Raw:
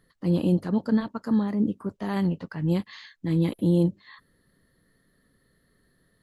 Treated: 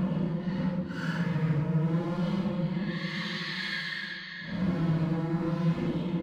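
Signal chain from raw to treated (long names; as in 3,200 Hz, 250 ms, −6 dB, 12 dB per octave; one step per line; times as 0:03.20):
camcorder AGC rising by 50 dB per second
hum removal 70.97 Hz, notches 15
on a send: repeating echo 83 ms, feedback 50%, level −8 dB
on the sum: soft clipping −25 dBFS, distortion −9 dB
high-frequency loss of the air 140 metres
gain into a clipping stage and back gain 29.5 dB
parametric band 680 Hz −7 dB 0.34 octaves
notch comb filter 390 Hz
extreme stretch with random phases 4.9×, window 0.10 s, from 0:02.30
level +3 dB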